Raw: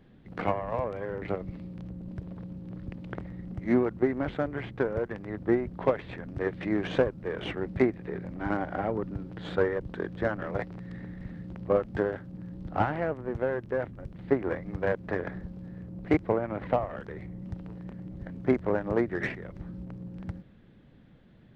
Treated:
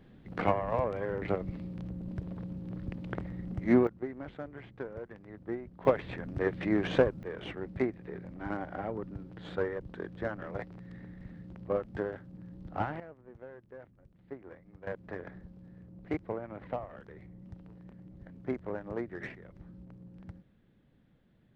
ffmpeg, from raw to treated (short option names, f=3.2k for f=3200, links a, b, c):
-af "asetnsamples=n=441:p=0,asendcmd='3.87 volume volume -12dB;5.85 volume volume 0dB;7.23 volume volume -6.5dB;13 volume volume -19dB;14.87 volume volume -10dB',volume=0.5dB"